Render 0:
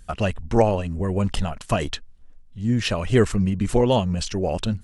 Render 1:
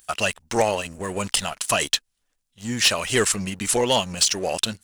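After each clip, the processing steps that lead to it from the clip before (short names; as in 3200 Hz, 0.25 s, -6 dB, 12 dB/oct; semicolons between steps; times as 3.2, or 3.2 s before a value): tilt +4.5 dB/oct; sample leveller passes 2; gain -4.5 dB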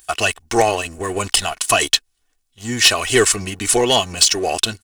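comb 2.7 ms, depth 56%; gain +4.5 dB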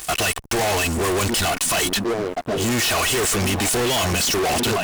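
delay with a stepping band-pass 0.759 s, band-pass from 200 Hz, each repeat 0.7 oct, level -11 dB; fuzz box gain 41 dB, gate -49 dBFS; sample leveller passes 1; gain -7.5 dB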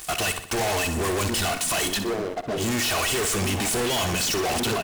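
feedback echo 62 ms, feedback 51%, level -10.5 dB; gain -4.5 dB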